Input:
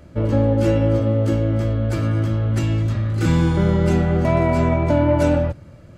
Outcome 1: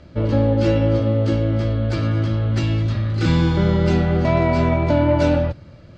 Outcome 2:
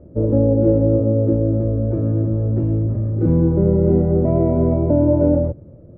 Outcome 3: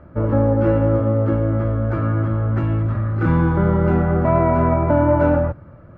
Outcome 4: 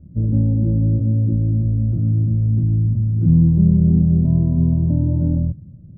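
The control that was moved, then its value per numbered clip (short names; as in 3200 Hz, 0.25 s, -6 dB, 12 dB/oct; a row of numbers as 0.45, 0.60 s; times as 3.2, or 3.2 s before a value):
synth low-pass, frequency: 4500, 460, 1300, 180 Hz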